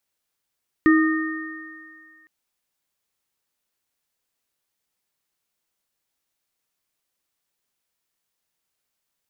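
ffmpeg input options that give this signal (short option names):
-f lavfi -i "aevalsrc='0.282*pow(10,-3*t/1.62)*sin(2*PI*317*t)+0.0708*pow(10,-3*t/1.94)*sin(2*PI*1230*t)+0.1*pow(10,-3*t/2.62)*sin(2*PI*1840*t)':d=1.41:s=44100"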